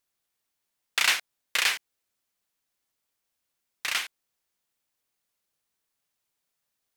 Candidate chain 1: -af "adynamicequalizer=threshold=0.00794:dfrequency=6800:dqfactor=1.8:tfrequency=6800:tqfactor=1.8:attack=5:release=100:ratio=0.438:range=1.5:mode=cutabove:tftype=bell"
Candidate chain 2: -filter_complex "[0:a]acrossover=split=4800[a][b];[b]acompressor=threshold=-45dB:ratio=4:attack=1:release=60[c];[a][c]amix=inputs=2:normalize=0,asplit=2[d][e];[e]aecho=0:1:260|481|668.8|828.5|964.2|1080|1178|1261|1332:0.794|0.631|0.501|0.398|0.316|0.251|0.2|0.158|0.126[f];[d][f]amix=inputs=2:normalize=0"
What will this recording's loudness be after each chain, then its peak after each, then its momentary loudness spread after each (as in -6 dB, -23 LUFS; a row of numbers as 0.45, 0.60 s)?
-26.5, -27.5 LUFS; -8.0, -9.0 dBFS; 12, 15 LU